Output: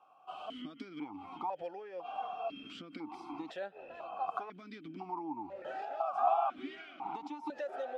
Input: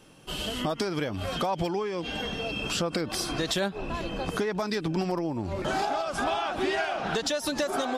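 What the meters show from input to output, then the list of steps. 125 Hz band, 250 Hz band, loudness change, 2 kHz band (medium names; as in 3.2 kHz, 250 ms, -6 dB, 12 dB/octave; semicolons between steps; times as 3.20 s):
-25.5 dB, -14.0 dB, -10.0 dB, -17.5 dB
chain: high-order bell 1 kHz +13.5 dB 1.2 oct; stepped vowel filter 2 Hz; trim -5.5 dB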